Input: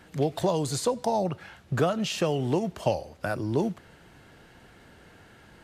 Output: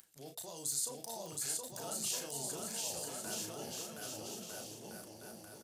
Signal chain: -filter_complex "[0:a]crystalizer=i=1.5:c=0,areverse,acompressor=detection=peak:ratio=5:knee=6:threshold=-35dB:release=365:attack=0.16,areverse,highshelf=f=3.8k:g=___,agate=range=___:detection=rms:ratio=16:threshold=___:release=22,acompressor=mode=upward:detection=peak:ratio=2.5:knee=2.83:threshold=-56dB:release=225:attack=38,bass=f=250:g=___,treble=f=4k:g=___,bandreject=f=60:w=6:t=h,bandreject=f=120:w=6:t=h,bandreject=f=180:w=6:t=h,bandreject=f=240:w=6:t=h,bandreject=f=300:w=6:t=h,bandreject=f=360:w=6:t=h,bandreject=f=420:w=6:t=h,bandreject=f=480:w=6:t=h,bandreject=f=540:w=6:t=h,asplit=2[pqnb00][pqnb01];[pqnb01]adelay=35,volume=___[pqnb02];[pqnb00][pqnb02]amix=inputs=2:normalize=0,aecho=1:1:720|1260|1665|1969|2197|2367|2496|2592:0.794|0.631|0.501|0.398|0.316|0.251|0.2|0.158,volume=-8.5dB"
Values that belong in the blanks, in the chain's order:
6.5, -27dB, -48dB, -5, 10, -6dB